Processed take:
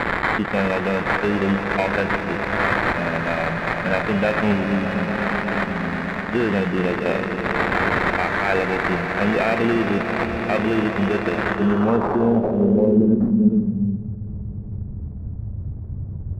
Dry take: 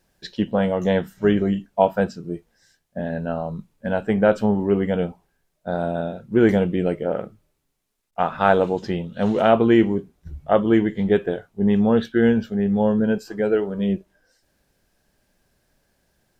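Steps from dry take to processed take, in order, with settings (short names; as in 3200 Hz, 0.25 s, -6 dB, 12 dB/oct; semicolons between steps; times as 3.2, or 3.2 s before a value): switching spikes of -16 dBFS; 4.64–6.16 Chebyshev band-stop 280–4500 Hz, order 3; limiter -12 dBFS, peak gain reduction 9 dB; sample-rate reducer 3100 Hz, jitter 0%; swelling echo 0.121 s, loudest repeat 5, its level -13 dB; low-pass sweep 2000 Hz -> 100 Hz, 11.44–14.18; running maximum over 3 samples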